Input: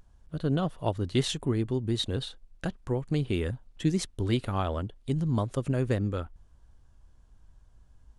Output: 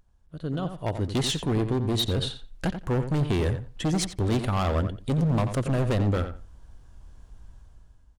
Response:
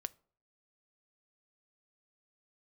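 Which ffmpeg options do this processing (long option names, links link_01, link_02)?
-filter_complex "[0:a]dynaudnorm=framelen=360:gausssize=5:maxgain=16dB,volume=15.5dB,asoftclip=hard,volume=-15.5dB,asplit=2[link_01][link_02];[link_02]adelay=88,lowpass=frequency=3400:poles=1,volume=-9dB,asplit=2[link_03][link_04];[link_04]adelay=88,lowpass=frequency=3400:poles=1,volume=0.17,asplit=2[link_05][link_06];[link_06]adelay=88,lowpass=frequency=3400:poles=1,volume=0.17[link_07];[link_01][link_03][link_05][link_07]amix=inputs=4:normalize=0,volume=-6dB"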